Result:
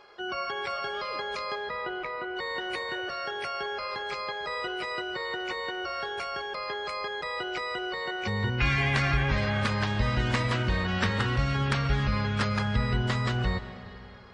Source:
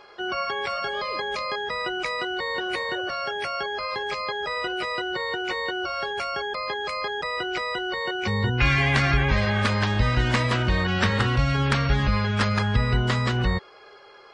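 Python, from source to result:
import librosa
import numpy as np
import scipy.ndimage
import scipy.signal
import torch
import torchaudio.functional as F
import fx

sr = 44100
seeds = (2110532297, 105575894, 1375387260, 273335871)

y = fx.lowpass(x, sr, hz=fx.line((1.54, 3100.0), (2.35, 1600.0)), slope=12, at=(1.54, 2.35), fade=0.02)
y = fx.rev_freeverb(y, sr, rt60_s=3.1, hf_ratio=0.7, predelay_ms=100, drr_db=12.0)
y = y * librosa.db_to_amplitude(-5.0)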